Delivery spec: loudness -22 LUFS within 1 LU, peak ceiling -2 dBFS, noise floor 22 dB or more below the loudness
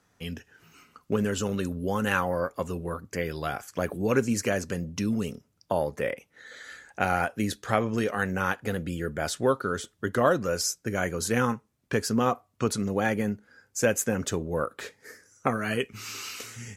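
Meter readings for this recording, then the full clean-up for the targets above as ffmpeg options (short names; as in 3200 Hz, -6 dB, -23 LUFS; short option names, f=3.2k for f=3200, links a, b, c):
loudness -28.5 LUFS; peak -6.5 dBFS; loudness target -22.0 LUFS
-> -af "volume=6.5dB,alimiter=limit=-2dB:level=0:latency=1"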